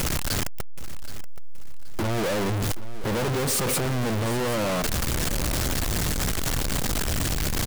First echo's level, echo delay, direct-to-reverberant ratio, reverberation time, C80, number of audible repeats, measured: -15.0 dB, 0.775 s, none, none, none, 2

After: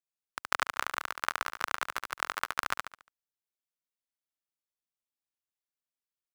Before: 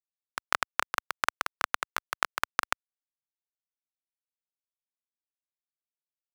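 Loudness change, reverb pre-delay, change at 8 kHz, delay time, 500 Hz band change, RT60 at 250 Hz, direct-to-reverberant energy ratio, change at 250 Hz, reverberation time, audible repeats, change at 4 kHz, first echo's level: -2.0 dB, none, -2.0 dB, 71 ms, -2.0 dB, none, none, -2.0 dB, none, 4, -2.0 dB, -4.0 dB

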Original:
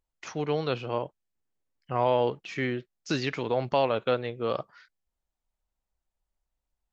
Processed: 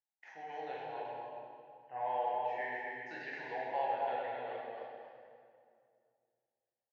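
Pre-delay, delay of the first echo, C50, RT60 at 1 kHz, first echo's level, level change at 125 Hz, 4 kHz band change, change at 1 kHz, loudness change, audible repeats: 11 ms, 0.263 s, -3.0 dB, 2.1 s, -5.0 dB, -27.5 dB, -18.5 dB, -4.0 dB, -10.5 dB, 1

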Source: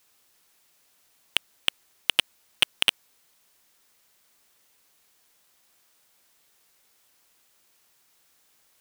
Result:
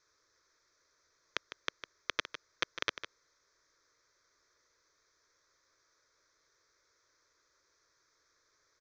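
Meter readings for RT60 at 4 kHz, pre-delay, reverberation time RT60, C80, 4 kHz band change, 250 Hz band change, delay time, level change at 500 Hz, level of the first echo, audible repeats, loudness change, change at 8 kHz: none, none, none, none, -16.5 dB, -5.5 dB, 0.154 s, -2.5 dB, -11.0 dB, 1, -13.5 dB, -13.5 dB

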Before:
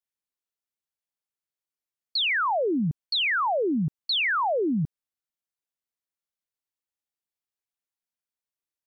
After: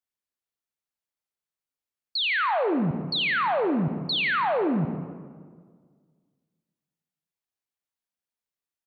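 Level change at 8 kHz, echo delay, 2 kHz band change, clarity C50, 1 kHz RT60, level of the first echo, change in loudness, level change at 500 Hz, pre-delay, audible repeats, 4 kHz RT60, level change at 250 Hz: n/a, 0.163 s, 0.0 dB, 8.0 dB, 1.7 s, -16.5 dB, 0.0 dB, +0.5 dB, 34 ms, 1, 0.95 s, +1.0 dB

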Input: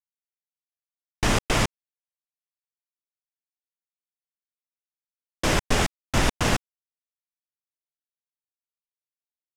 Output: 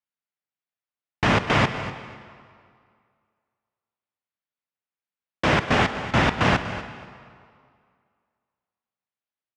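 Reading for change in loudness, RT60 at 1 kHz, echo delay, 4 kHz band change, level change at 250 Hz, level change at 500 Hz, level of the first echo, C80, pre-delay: +2.5 dB, 2.2 s, 0.244 s, +0.5 dB, +4.0 dB, +3.5 dB, -14.0 dB, 9.5 dB, 32 ms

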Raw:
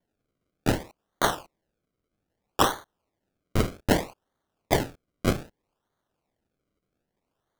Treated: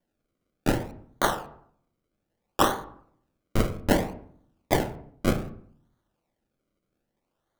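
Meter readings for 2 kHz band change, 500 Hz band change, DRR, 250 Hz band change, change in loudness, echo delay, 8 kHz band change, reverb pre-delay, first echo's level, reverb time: -0.5 dB, +0.5 dB, 8.5 dB, +1.0 dB, 0.0 dB, none, -1.5 dB, 3 ms, none, 0.60 s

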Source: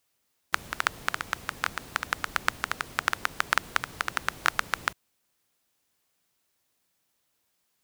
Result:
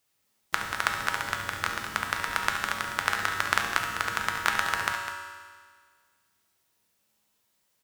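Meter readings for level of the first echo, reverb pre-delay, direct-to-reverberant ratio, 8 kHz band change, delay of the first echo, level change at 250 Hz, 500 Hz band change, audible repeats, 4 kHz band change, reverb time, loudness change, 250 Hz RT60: -10.0 dB, 4 ms, 0.0 dB, +2.0 dB, 70 ms, +2.5 dB, +2.5 dB, 2, +2.0 dB, 1.7 s, +1.5 dB, 1.7 s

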